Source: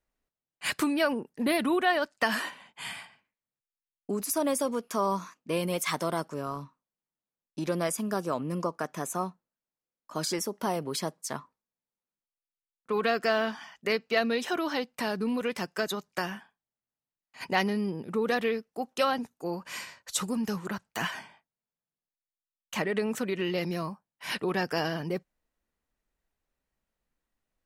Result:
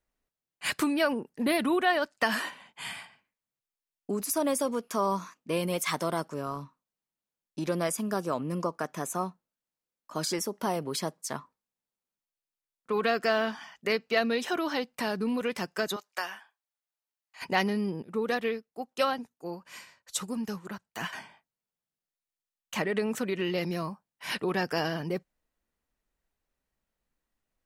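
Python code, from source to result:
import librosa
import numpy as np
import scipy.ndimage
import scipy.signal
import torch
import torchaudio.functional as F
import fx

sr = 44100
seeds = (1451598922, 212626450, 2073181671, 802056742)

y = fx.highpass(x, sr, hz=680.0, slope=12, at=(15.96, 17.42))
y = fx.upward_expand(y, sr, threshold_db=-41.0, expansion=1.5, at=(18.02, 21.13))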